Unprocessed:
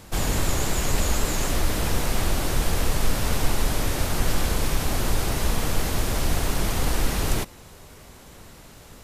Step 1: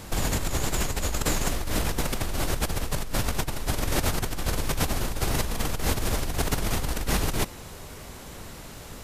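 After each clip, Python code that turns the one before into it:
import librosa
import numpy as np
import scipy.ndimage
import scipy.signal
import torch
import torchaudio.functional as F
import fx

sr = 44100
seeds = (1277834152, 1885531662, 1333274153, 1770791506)

y = fx.over_compress(x, sr, threshold_db=-26.0, ratio=-1.0)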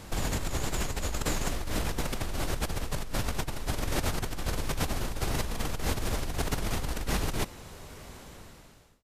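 y = fx.fade_out_tail(x, sr, length_s=0.88)
y = fx.high_shelf(y, sr, hz=9500.0, db=-5.5)
y = y * librosa.db_to_amplitude(-4.0)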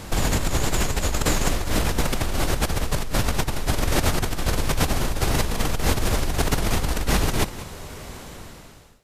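y = x + 10.0 ** (-15.5 / 20.0) * np.pad(x, (int(192 * sr / 1000.0), 0))[:len(x)]
y = y * librosa.db_to_amplitude(8.5)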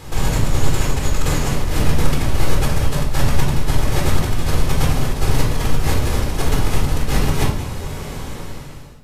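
y = fx.rider(x, sr, range_db=5, speed_s=0.5)
y = fx.room_shoebox(y, sr, seeds[0], volume_m3=880.0, walls='furnished', distance_m=4.0)
y = y * librosa.db_to_amplitude(-4.0)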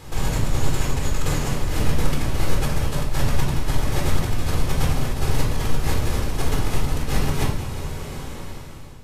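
y = fx.echo_feedback(x, sr, ms=360, feedback_pct=58, wet_db=-14.0)
y = y * librosa.db_to_amplitude(-4.5)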